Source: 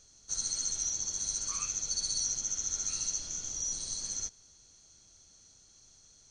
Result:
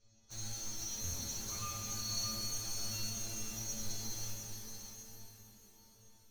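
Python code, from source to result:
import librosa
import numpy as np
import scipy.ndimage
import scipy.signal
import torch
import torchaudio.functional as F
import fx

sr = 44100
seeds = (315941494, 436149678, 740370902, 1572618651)

p1 = scipy.signal.sosfilt(scipy.signal.butter(2, 4500.0, 'lowpass', fs=sr, output='sos'), x)
p2 = fx.low_shelf(p1, sr, hz=400.0, db=10.0)
p3 = fx.stiff_resonator(p2, sr, f0_hz=110.0, decay_s=0.8, stiffness=0.002)
p4 = fx.quant_companded(p3, sr, bits=4)
p5 = p3 + F.gain(torch.from_numpy(p4), -4.5).numpy()
p6 = fx.doubler(p5, sr, ms=19.0, db=-7.0)
p7 = p6 + fx.echo_single(p6, sr, ms=622, db=-7.0, dry=0)
p8 = fx.buffer_glitch(p7, sr, at_s=(1.03,), block=512, repeats=8)
p9 = fx.rev_shimmer(p8, sr, seeds[0], rt60_s=3.5, semitones=12, shimmer_db=-8, drr_db=1.0)
y = F.gain(torch.from_numpy(p9), 5.5).numpy()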